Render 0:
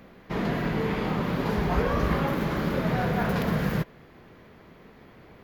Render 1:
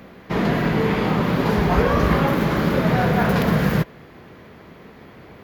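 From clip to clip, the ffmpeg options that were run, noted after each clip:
-af "highpass=49,volume=7.5dB"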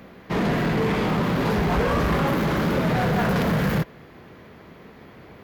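-filter_complex "[0:a]asplit=2[a][b];[b]acrusher=bits=3:mix=0:aa=0.5,volume=-9.5dB[c];[a][c]amix=inputs=2:normalize=0,asoftclip=type=tanh:threshold=-15dB,volume=-2dB"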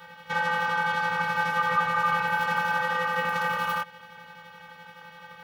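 -filter_complex "[0:a]acrossover=split=470[a][b];[b]acompressor=threshold=-32dB:ratio=6[c];[a][c]amix=inputs=2:normalize=0,afftfilt=real='hypot(re,im)*cos(PI*b)':imag='0':win_size=512:overlap=0.75,aeval=exprs='val(0)*sin(2*PI*1200*n/s)':c=same,volume=6dB"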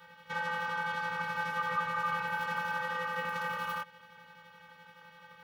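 -af "asuperstop=centerf=730:order=4:qfactor=4.7,volume=-8dB"

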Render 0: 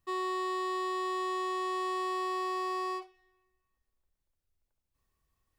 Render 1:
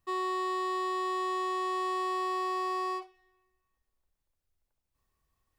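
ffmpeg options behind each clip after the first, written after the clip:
-af "equalizer=f=860:t=o:w=1.4:g=2.5"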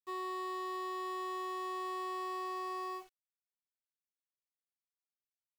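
-af "acrusher=bits=8:mix=0:aa=0.000001,volume=-7.5dB"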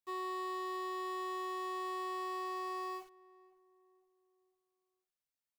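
-filter_complex "[0:a]asplit=2[a][b];[b]adelay=506,lowpass=f=1k:p=1,volume=-19dB,asplit=2[c][d];[d]adelay=506,lowpass=f=1k:p=1,volume=0.47,asplit=2[e][f];[f]adelay=506,lowpass=f=1k:p=1,volume=0.47,asplit=2[g][h];[h]adelay=506,lowpass=f=1k:p=1,volume=0.47[i];[a][c][e][g][i]amix=inputs=5:normalize=0"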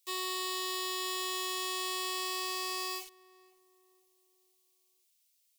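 -af "aexciter=amount=5.3:drive=7.5:freq=2.2k"

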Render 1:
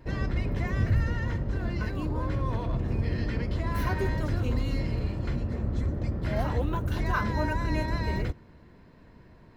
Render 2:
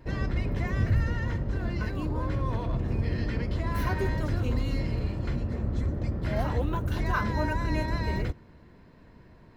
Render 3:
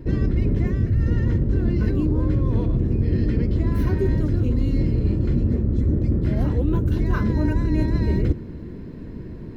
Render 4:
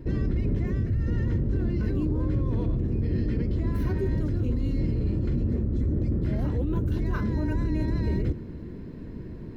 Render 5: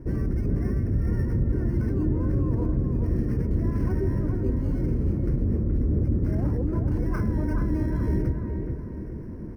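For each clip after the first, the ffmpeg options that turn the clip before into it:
-af anull
-af "lowshelf=f=520:t=q:w=1.5:g=11,areverse,acompressor=threshold=-23dB:ratio=12,areverse,volume=7dB"
-af "alimiter=limit=-15dB:level=0:latency=1:release=33,volume=-3.5dB"
-filter_complex "[0:a]acrossover=split=1900[a][b];[a]aecho=1:1:424|848|1272|1696|2120:0.562|0.236|0.0992|0.0417|0.0175[c];[b]acrusher=samples=12:mix=1:aa=0.000001[d];[c][d]amix=inputs=2:normalize=0"

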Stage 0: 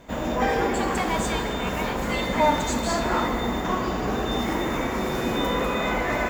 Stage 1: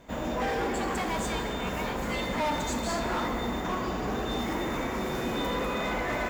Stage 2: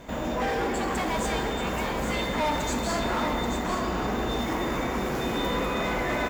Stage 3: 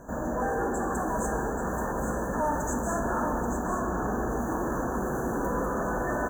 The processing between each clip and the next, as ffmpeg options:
-af "asoftclip=type=hard:threshold=-20.5dB,volume=-4.5dB"
-filter_complex "[0:a]alimiter=level_in=7dB:limit=-24dB:level=0:latency=1:release=305,volume=-7dB,asplit=2[a][b];[b]aecho=0:1:832:0.422[c];[a][c]amix=inputs=2:normalize=0,volume=8dB"
-af "afftfilt=real='re*(1-between(b*sr/4096,1800,5900))':imag='im*(1-between(b*sr/4096,1800,5900))':win_size=4096:overlap=0.75,volume=-1dB"

